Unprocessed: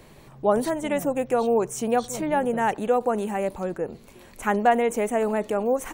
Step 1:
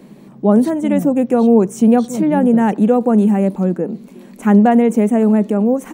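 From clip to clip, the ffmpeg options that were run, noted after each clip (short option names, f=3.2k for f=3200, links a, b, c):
-af "equalizer=f=210:t=o:w=2.3:g=12,dynaudnorm=f=430:g=5:m=3dB,lowshelf=f=140:t=q:w=3:g=-10.5,volume=-1dB"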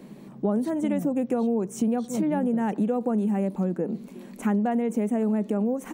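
-af "acompressor=threshold=-18dB:ratio=6,volume=-4dB"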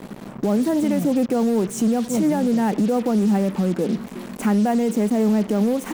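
-af "alimiter=limit=-20.5dB:level=0:latency=1:release=39,acrusher=bits=6:mix=0:aa=0.5,asoftclip=type=hard:threshold=-21.5dB,volume=8dB"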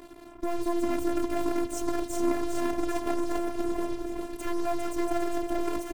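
-af "aecho=1:1:404|808|1212|1616|2020|2424|2828:0.501|0.266|0.141|0.0746|0.0395|0.021|0.0111,aeval=exprs='0.398*(cos(1*acos(clip(val(0)/0.398,-1,1)))-cos(1*PI/2))+0.1*(cos(3*acos(clip(val(0)/0.398,-1,1)))-cos(3*PI/2))+0.0282*(cos(5*acos(clip(val(0)/0.398,-1,1)))-cos(5*PI/2))+0.0398*(cos(6*acos(clip(val(0)/0.398,-1,1)))-cos(6*PI/2))':c=same,afftfilt=real='hypot(re,im)*cos(PI*b)':imag='0':win_size=512:overlap=0.75,volume=-2dB"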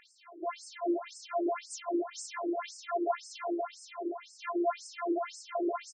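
-filter_complex "[0:a]flanger=delay=9.7:depth=2:regen=-66:speed=1.9:shape=triangular,asplit=2[a][b];[b]aecho=0:1:60|138|239.4|371.2|542.6:0.631|0.398|0.251|0.158|0.1[c];[a][c]amix=inputs=2:normalize=0,afftfilt=real='re*between(b*sr/1024,390*pow(6600/390,0.5+0.5*sin(2*PI*1.9*pts/sr))/1.41,390*pow(6600/390,0.5+0.5*sin(2*PI*1.9*pts/sr))*1.41)':imag='im*between(b*sr/1024,390*pow(6600/390,0.5+0.5*sin(2*PI*1.9*pts/sr))/1.41,390*pow(6600/390,0.5+0.5*sin(2*PI*1.9*pts/sr))*1.41)':win_size=1024:overlap=0.75,volume=6.5dB"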